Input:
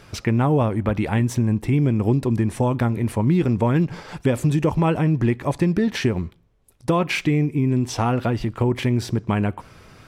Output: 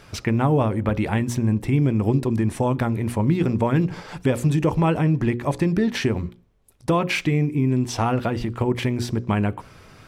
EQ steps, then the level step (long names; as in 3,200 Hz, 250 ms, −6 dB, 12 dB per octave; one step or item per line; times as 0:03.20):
mains-hum notches 60/120/180/240/300/360/420/480/540 Hz
0.0 dB